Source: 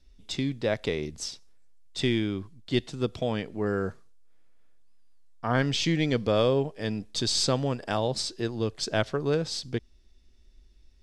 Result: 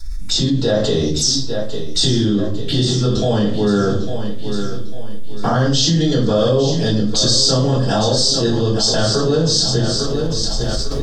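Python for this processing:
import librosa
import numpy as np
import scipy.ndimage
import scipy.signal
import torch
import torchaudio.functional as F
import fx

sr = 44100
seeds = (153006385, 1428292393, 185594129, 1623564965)

y = fx.recorder_agc(x, sr, target_db=-15.0, rise_db_per_s=8.2, max_gain_db=30)
y = fx.high_shelf(y, sr, hz=2200.0, db=11.0)
y = fx.env_phaser(y, sr, low_hz=470.0, high_hz=2300.0, full_db=-26.5)
y = fx.echo_feedback(y, sr, ms=850, feedback_pct=58, wet_db=-12.0)
y = fx.room_shoebox(y, sr, seeds[0], volume_m3=41.0, walls='mixed', distance_m=3.1)
y = fx.env_flatten(y, sr, amount_pct=70)
y = y * 10.0 ** (-10.5 / 20.0)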